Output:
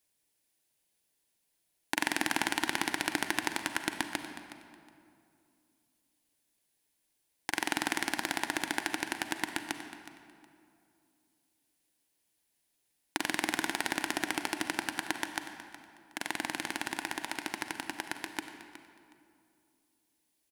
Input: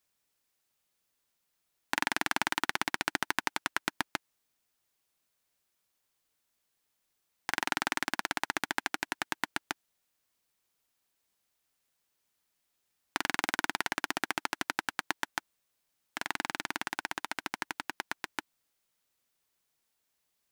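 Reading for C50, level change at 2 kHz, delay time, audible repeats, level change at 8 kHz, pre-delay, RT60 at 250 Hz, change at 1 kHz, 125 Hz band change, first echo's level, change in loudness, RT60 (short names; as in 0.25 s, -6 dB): 7.0 dB, -0.5 dB, 0.367 s, 2, +2.5 dB, 35 ms, 2.9 s, -1.5 dB, +1.0 dB, -15.0 dB, 0.0 dB, 2.5 s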